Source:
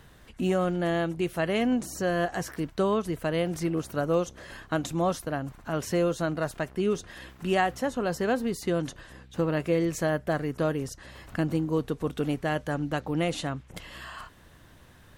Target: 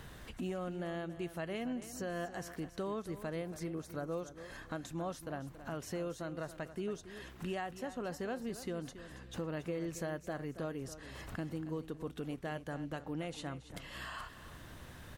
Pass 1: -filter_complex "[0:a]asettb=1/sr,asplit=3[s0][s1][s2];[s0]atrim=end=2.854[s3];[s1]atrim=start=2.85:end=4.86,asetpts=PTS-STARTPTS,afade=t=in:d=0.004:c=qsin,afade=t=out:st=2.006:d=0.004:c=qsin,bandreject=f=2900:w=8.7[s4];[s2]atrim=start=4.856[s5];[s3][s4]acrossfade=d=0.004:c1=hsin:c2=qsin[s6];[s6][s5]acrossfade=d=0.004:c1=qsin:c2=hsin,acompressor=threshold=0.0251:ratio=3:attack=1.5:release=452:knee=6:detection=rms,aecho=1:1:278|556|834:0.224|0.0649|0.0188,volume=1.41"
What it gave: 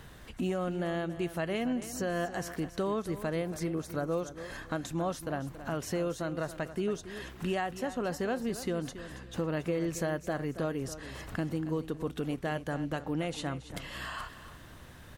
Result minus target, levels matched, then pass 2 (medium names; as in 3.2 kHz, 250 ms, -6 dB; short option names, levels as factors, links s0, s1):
compression: peak gain reduction -7 dB
-filter_complex "[0:a]asettb=1/sr,asplit=3[s0][s1][s2];[s0]atrim=end=2.854[s3];[s1]atrim=start=2.85:end=4.86,asetpts=PTS-STARTPTS,afade=t=in:d=0.004:c=qsin,afade=t=out:st=2.006:d=0.004:c=qsin,bandreject=f=2900:w=8.7[s4];[s2]atrim=start=4.856[s5];[s3][s4]acrossfade=d=0.004:c1=hsin:c2=qsin[s6];[s6][s5]acrossfade=d=0.004:c1=qsin:c2=hsin,acompressor=threshold=0.0075:ratio=3:attack=1.5:release=452:knee=6:detection=rms,aecho=1:1:278|556|834:0.224|0.0649|0.0188,volume=1.41"